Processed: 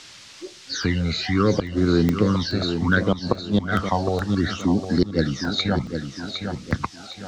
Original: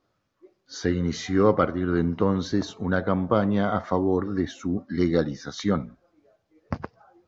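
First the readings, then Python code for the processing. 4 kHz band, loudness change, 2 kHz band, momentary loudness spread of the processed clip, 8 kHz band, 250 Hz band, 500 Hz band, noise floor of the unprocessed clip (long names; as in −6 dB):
+11.5 dB, +2.5 dB, +7.5 dB, 11 LU, can't be measured, +3.0 dB, −0.5 dB, −74 dBFS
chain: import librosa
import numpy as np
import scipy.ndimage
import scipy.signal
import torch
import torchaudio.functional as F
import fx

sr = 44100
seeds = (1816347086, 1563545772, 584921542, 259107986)

p1 = fx.phaser_stages(x, sr, stages=12, low_hz=310.0, high_hz=3000.0, hz=0.67, feedback_pct=40)
p2 = fx.level_steps(p1, sr, step_db=18)
p3 = p1 + F.gain(torch.from_numpy(p2), -1.0).numpy()
p4 = fx.high_shelf(p3, sr, hz=2100.0, db=11.0)
p5 = fx.dmg_noise_colour(p4, sr, seeds[0], colour='violet', level_db=-38.0)
p6 = fx.gate_flip(p5, sr, shuts_db=-8.0, range_db=-29)
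p7 = scipy.signal.sosfilt(scipy.signal.butter(4, 5400.0, 'lowpass', fs=sr, output='sos'), p6)
p8 = p7 + fx.echo_feedback(p7, sr, ms=760, feedback_pct=33, wet_db=-10.0, dry=0)
p9 = fx.buffer_crackle(p8, sr, first_s=0.41, period_s=0.42, block=64, kind='zero')
p10 = fx.band_squash(p9, sr, depth_pct=40)
y = F.gain(torch.from_numpy(p10), 3.0).numpy()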